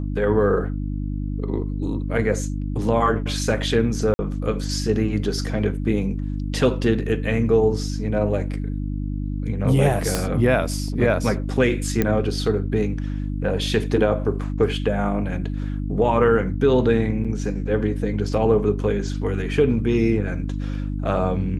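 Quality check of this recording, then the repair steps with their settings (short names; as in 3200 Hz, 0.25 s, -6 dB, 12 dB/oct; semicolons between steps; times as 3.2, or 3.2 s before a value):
hum 50 Hz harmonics 6 -26 dBFS
4.14–4.19 gap 50 ms
10.15 pop -6 dBFS
12.02 pop -7 dBFS
17.24–17.25 gap 6.3 ms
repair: de-click; de-hum 50 Hz, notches 6; interpolate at 4.14, 50 ms; interpolate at 17.24, 6.3 ms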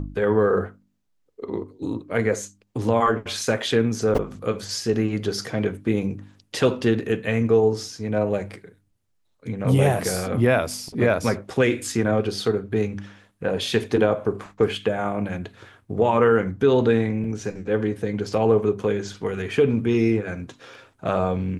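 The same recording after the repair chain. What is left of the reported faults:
10.15 pop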